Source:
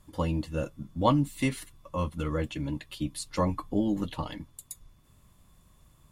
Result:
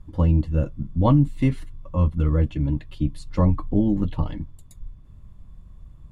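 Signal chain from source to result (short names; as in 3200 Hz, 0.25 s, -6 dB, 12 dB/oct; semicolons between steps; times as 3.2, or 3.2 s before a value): RIAA curve playback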